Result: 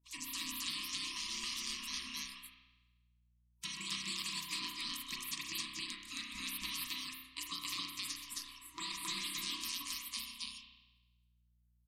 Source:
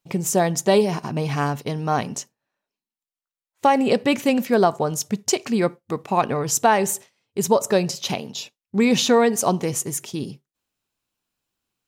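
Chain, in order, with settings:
low-pass filter 7,700 Hz 12 dB per octave
gate on every frequency bin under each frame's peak −30 dB weak
reverb reduction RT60 0.54 s
brick-wall band-stop 370–960 Hz
0:02.13–0:03.68: parametric band 1,400 Hz +7 dB 0.77 octaves
downward compressor, threshold −45 dBFS, peak gain reduction 12.5 dB
phaser with its sweep stopped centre 400 Hz, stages 6
mains hum 60 Hz, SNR 30 dB
loudspeakers that aren't time-aligned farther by 44 metres −11 dB, 92 metres 0 dB
spring reverb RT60 1.1 s, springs 31 ms, chirp 55 ms, DRR 1 dB
level +8 dB

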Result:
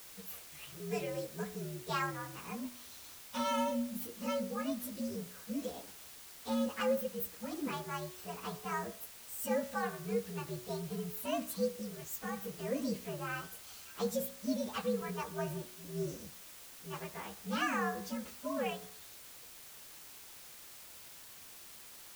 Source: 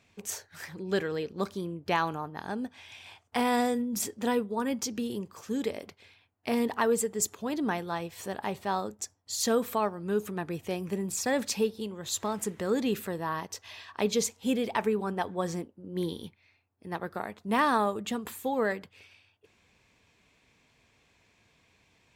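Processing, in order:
partials spread apart or drawn together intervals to 122%
bit-depth reduction 8 bits, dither triangular
hum removal 61.08 Hz, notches 32
level −4.5 dB

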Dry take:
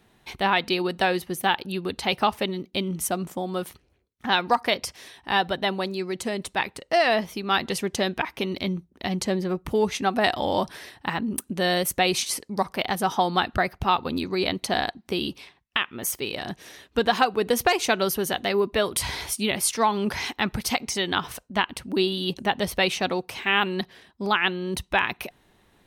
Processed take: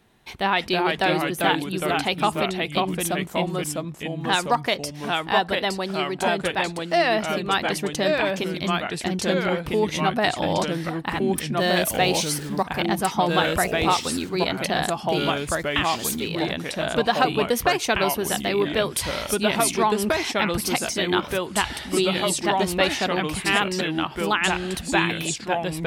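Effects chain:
0:11.59–0:12.63: converter with a step at zero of −37 dBFS
delay with pitch and tempo change per echo 272 ms, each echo −2 semitones, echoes 2

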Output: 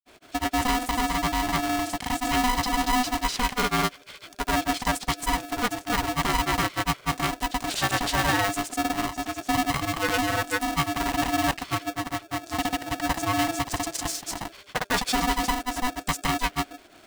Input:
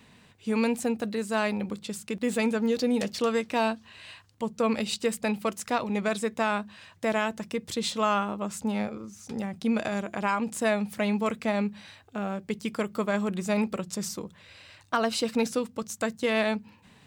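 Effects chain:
tube saturation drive 22 dB, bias 0.35
granular cloud, spray 273 ms, pitch spread up and down by 0 semitones
ring modulator with a square carrier 500 Hz
level +6.5 dB

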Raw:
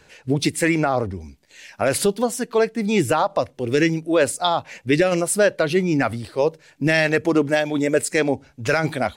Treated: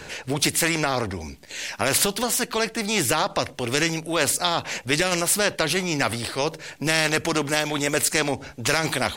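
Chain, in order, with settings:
every bin compressed towards the loudest bin 2 to 1

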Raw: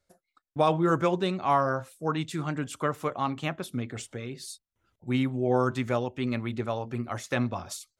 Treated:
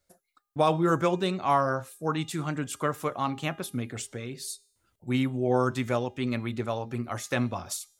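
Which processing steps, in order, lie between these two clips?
high-shelf EQ 8,100 Hz +10 dB
hum removal 406.4 Hz, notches 33

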